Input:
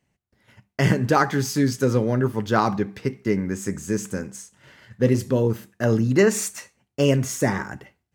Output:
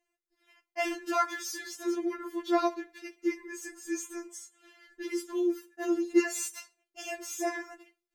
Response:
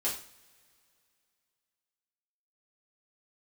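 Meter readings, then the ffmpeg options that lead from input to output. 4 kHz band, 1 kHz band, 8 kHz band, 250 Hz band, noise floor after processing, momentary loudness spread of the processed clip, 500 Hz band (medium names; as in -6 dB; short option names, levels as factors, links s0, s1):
-8.5 dB, -8.0 dB, -7.0 dB, -9.0 dB, under -85 dBFS, 15 LU, -10.5 dB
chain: -af "afftfilt=real='re*4*eq(mod(b,16),0)':imag='im*4*eq(mod(b,16),0)':win_size=2048:overlap=0.75,volume=0.596"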